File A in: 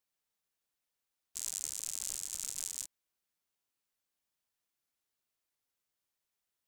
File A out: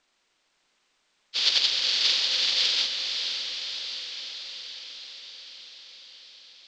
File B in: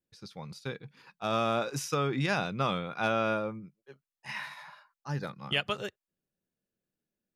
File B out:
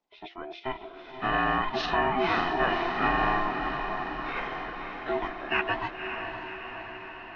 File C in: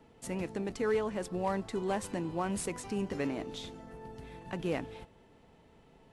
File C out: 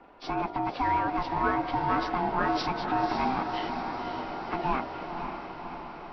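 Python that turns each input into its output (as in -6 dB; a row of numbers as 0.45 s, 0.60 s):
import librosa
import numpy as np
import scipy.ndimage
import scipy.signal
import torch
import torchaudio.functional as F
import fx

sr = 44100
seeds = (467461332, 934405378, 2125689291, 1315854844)

p1 = fx.freq_compress(x, sr, knee_hz=1200.0, ratio=1.5)
p2 = fx.level_steps(p1, sr, step_db=13)
p3 = p1 + F.gain(torch.from_numpy(p2), -1.0).numpy()
p4 = scipy.signal.sosfilt(scipy.signal.butter(2, 3700.0, 'lowpass', fs=sr, output='sos'), p3)
p5 = fx.hum_notches(p4, sr, base_hz=60, count=3)
p6 = p5 * np.sin(2.0 * np.pi * 520.0 * np.arange(len(p5)) / sr)
p7 = fx.peak_eq(p6, sr, hz=82.0, db=-15.0, octaves=1.5)
p8 = fx.echo_diffused(p7, sr, ms=552, feedback_pct=66, wet_db=-6.5)
y = p8 * 10.0 ** (-30 / 20.0) / np.sqrt(np.mean(np.square(p8)))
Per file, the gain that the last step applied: +20.0 dB, +5.5 dB, +7.0 dB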